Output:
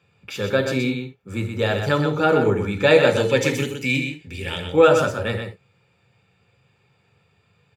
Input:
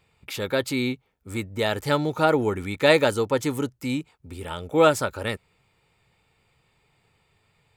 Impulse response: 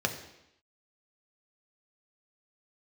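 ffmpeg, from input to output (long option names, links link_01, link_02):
-filter_complex "[0:a]asettb=1/sr,asplit=3[link_01][link_02][link_03];[link_01]atrim=end=3.164[link_04];[link_02]atrim=start=3.16:end=4.6,asetpts=PTS-STARTPTS,afade=type=in:duration=0.004:curve=qsin,afade=type=out:start_time=1.436:duration=0.004:curve=qsin,highshelf=frequency=1600:width_type=q:width=3:gain=7.5[link_05];[link_03]atrim=start=4.596[link_06];[link_04][link_05]acrossfade=duration=0.004:curve1=hsin:curve2=qsin[link_07];[link_07][link_06]acrossfade=duration=0.004:curve1=qsin:curve2=hsin,aecho=1:1:124:0.473[link_08];[1:a]atrim=start_sample=2205,atrim=end_sample=3969[link_09];[link_08][link_09]afir=irnorm=-1:irlink=0,volume=-6dB"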